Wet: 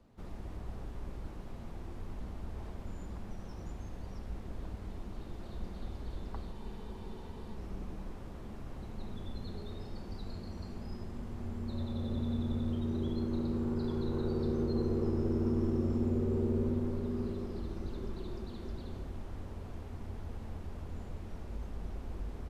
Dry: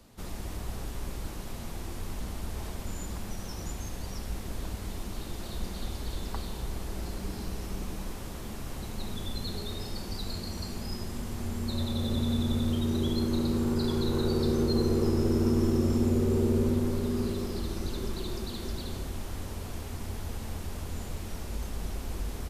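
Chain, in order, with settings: low-pass 1.2 kHz 6 dB/octave; spectral freeze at 6.55 s, 1.00 s; trim -5.5 dB

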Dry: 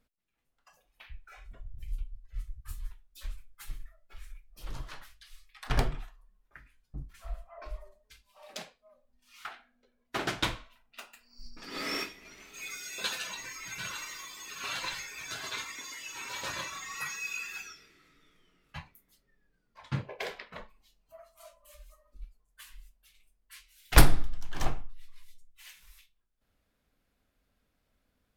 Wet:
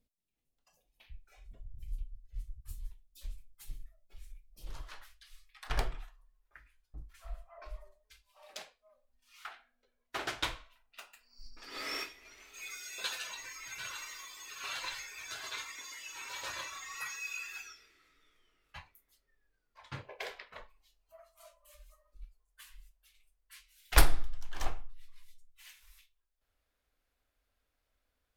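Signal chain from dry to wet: peaking EQ 1.4 kHz -14 dB 1.4 oct, from 4.70 s 180 Hz; trim -3.5 dB

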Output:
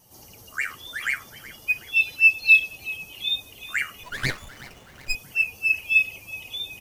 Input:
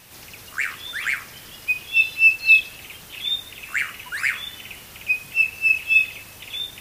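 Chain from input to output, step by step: expander on every frequency bin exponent 1.5; frequency-shifting echo 373 ms, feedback 51%, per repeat -33 Hz, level -18 dB; 4.03–5.15 s: sliding maximum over 9 samples

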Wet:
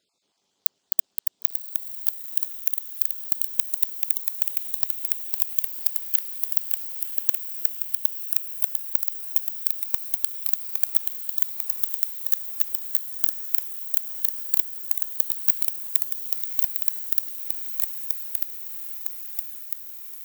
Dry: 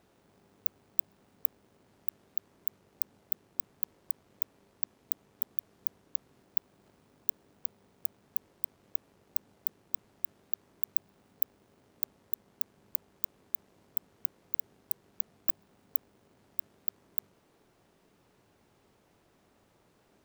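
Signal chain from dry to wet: random holes in the spectrogram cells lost 34%; high-pass 440 Hz 6 dB/octave; high-order bell 5.1 kHz +13 dB; waveshaping leveller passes 5; ever faster or slower copies 220 ms, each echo -1 st, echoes 2; on a send: echo that smears into a reverb 1027 ms, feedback 61%, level -7.5 dB

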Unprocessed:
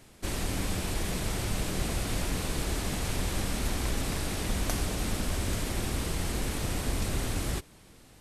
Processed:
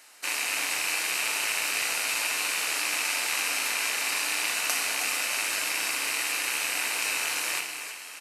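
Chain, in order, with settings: rattle on loud lows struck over -38 dBFS, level -24 dBFS; high-pass 1.1 kHz 12 dB/octave; band-stop 3.4 kHz, Q 8.1; on a send: frequency-shifting echo 317 ms, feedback 55%, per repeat +39 Hz, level -9 dB; on the sum: FDN reverb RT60 1.1 s, low-frequency decay 1.4×, high-frequency decay 0.95×, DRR 4.5 dB; trim +6.5 dB

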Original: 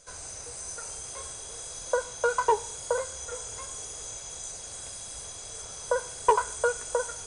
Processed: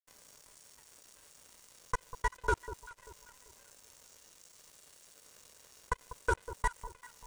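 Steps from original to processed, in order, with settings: level held to a coarse grid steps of 23 dB; ring modulator 510 Hz; crossover distortion -45.5 dBFS; on a send: echo whose repeats swap between lows and highs 195 ms, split 1.1 kHz, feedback 55%, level -12 dB

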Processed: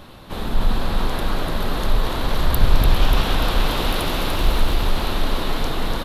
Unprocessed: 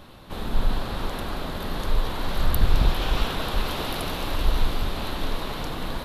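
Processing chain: 4.31–4.74 s: added noise pink -52 dBFS; in parallel at -11.5 dB: hard clipper -22.5 dBFS, distortion -6 dB; on the sum: feedback delay 293 ms, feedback 55%, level -5 dB; trim +2.5 dB

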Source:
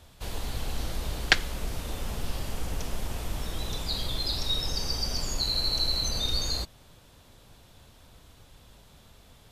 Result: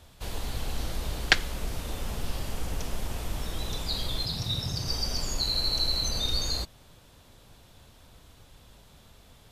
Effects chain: 4.25–4.88 s: ring modulator 110 Hz

